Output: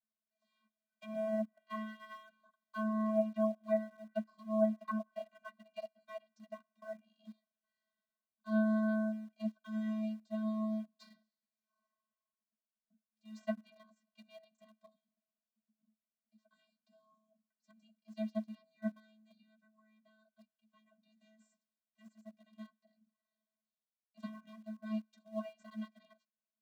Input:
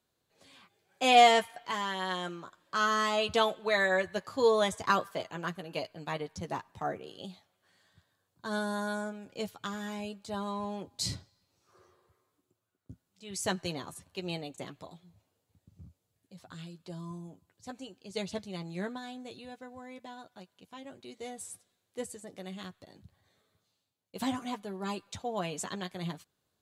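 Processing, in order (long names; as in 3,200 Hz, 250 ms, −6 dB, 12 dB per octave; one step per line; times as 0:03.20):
stylus tracing distortion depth 0.094 ms
treble cut that deepens with the level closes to 680 Hz, closed at −24 dBFS
low-shelf EQ 480 Hz −8.5 dB
channel vocoder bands 32, square 217 Hz
in parallel at −9 dB: centre clipping without the shift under −46.5 dBFS
on the sum: expander for the loud parts 1.5 to 1, over −49 dBFS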